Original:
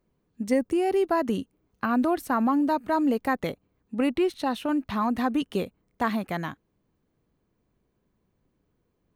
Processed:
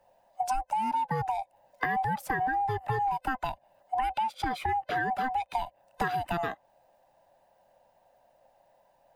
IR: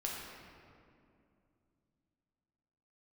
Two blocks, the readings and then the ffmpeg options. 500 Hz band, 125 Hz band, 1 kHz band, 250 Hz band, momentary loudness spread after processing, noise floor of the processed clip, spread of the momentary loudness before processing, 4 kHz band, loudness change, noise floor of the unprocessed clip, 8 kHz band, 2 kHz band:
-10.5 dB, +1.5 dB, +2.0 dB, -16.5 dB, 7 LU, -67 dBFS, 10 LU, -4.0 dB, -4.5 dB, -74 dBFS, n/a, +1.0 dB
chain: -filter_complex "[0:a]afftfilt=real='real(if(lt(b,1008),b+24*(1-2*mod(floor(b/24),2)),b),0)':imag='imag(if(lt(b,1008),b+24*(1-2*mod(floor(b/24),2)),b),0)':win_size=2048:overlap=0.75,equalizer=f=64:w=3.6:g=-11,acrossover=split=160|550|3600[a][b][c][d];[b]asoftclip=type=tanh:threshold=-33.5dB[e];[a][e][c][d]amix=inputs=4:normalize=0,acompressor=threshold=-35dB:ratio=8,adynamicequalizer=threshold=0.00178:dfrequency=3200:dqfactor=0.7:tfrequency=3200:tqfactor=0.7:attack=5:release=100:ratio=0.375:range=3:mode=cutabove:tftype=highshelf,volume=8dB"

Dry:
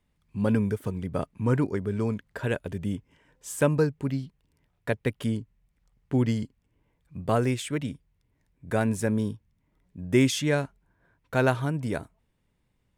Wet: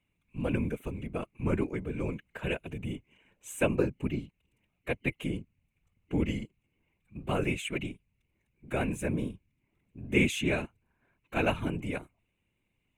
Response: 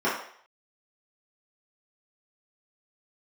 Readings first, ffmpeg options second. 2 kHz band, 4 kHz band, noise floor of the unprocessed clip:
-1.0 dB, -3.0 dB, -73 dBFS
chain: -af "superequalizer=6b=1.41:12b=3.55:14b=0.282,afftfilt=real='hypot(re,im)*cos(2*PI*random(0))':imag='hypot(re,im)*sin(2*PI*random(1))':win_size=512:overlap=0.75"

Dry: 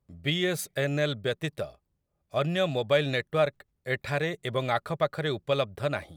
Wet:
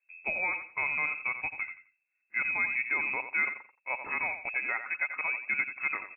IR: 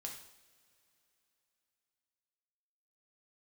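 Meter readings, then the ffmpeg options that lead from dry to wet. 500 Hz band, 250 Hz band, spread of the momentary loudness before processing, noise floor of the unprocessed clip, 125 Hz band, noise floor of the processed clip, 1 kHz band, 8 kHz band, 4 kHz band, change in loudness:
-20.0 dB, -19.0 dB, 8 LU, -79 dBFS, under -25 dB, -80 dBFS, -4.5 dB, n/a, under -40 dB, -1.5 dB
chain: -filter_complex "[0:a]alimiter=limit=-17dB:level=0:latency=1:release=87,asplit=2[a][b];[b]aecho=0:1:87|174|261:0.335|0.077|0.0177[c];[a][c]amix=inputs=2:normalize=0,lowpass=f=2.3k:t=q:w=0.5098,lowpass=f=2.3k:t=q:w=0.6013,lowpass=f=2.3k:t=q:w=0.9,lowpass=f=2.3k:t=q:w=2.563,afreqshift=-2700,volume=-3dB"

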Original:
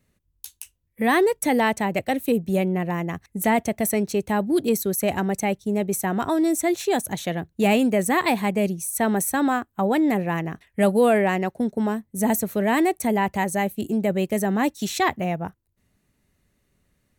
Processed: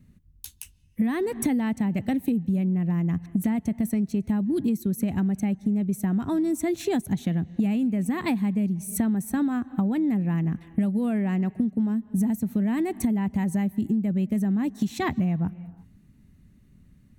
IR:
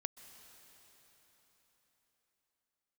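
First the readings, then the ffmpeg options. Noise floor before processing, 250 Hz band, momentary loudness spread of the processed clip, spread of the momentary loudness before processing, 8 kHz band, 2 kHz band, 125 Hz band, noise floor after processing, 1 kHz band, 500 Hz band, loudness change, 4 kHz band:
-71 dBFS, +0.5 dB, 3 LU, 8 LU, -9.5 dB, -12.0 dB, +2.5 dB, -57 dBFS, -13.0 dB, -11.0 dB, -3.0 dB, under -10 dB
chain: -filter_complex "[0:a]lowshelf=f=330:t=q:w=1.5:g=12.5,asplit=2[a][b];[1:a]atrim=start_sample=2205,afade=t=out:st=0.42:d=0.01,atrim=end_sample=18963,lowpass=4.8k[c];[b][c]afir=irnorm=-1:irlink=0,volume=-8.5dB[d];[a][d]amix=inputs=2:normalize=0,acompressor=threshold=-20dB:ratio=16,volume=-1.5dB"

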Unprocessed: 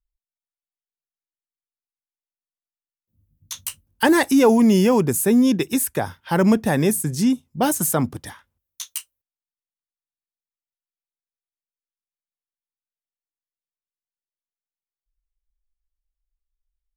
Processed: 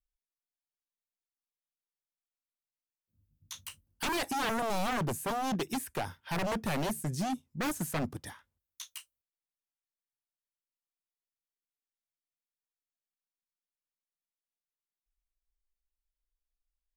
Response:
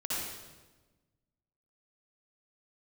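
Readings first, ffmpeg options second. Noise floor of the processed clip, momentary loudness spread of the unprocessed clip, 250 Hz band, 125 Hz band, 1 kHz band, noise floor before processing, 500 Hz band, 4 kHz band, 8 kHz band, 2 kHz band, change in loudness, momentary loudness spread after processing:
under -85 dBFS, 16 LU, -18.5 dB, -12.5 dB, -8.5 dB, under -85 dBFS, -16.5 dB, -8.0 dB, -15.0 dB, -10.5 dB, -15.0 dB, 14 LU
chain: -filter_complex "[0:a]acrossover=split=4100[a][b];[b]acompressor=threshold=-31dB:ratio=4:attack=1:release=60[c];[a][c]amix=inputs=2:normalize=0,aeval=exprs='0.119*(abs(mod(val(0)/0.119+3,4)-2)-1)':c=same,volume=-8dB"

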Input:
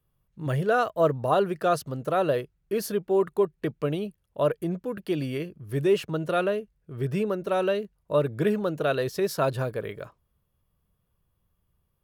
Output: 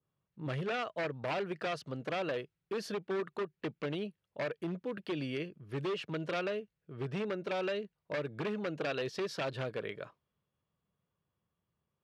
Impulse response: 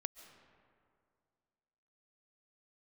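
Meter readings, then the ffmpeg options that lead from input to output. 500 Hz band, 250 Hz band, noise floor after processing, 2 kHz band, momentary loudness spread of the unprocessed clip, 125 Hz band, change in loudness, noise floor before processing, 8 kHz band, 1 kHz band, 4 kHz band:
-11.5 dB, -9.5 dB, under -85 dBFS, -5.5 dB, 9 LU, -11.0 dB, -10.5 dB, -74 dBFS, under -10 dB, -12.0 dB, -4.0 dB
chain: -af "acompressor=threshold=-25dB:ratio=4,aeval=exprs='0.0631*(abs(mod(val(0)/0.0631+3,4)-2)-1)':c=same,highpass=140,lowpass=3.8k,adynamicequalizer=threshold=0.00501:dfrequency=1800:dqfactor=0.7:tfrequency=1800:tqfactor=0.7:attack=5:release=100:ratio=0.375:range=3.5:mode=boostabove:tftype=highshelf,volume=-5.5dB"

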